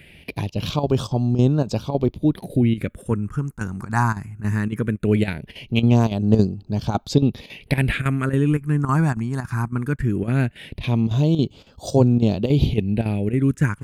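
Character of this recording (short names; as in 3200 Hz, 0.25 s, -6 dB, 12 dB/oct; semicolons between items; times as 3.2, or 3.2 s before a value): chopped level 3.6 Hz, depth 65%, duty 85%; phasing stages 4, 0.19 Hz, lowest notch 530–2000 Hz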